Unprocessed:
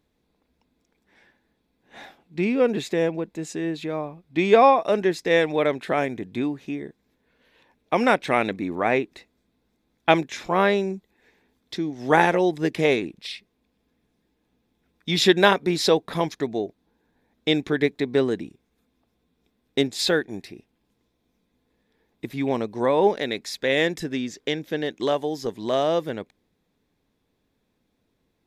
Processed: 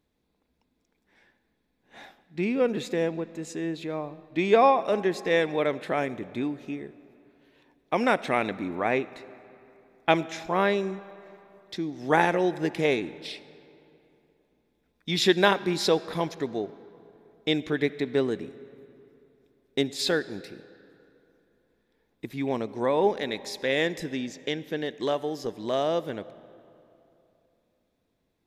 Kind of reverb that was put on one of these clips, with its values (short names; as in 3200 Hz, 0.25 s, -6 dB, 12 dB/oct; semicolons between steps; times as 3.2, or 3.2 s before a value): digital reverb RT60 3 s, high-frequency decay 0.65×, pre-delay 25 ms, DRR 17 dB; gain -4 dB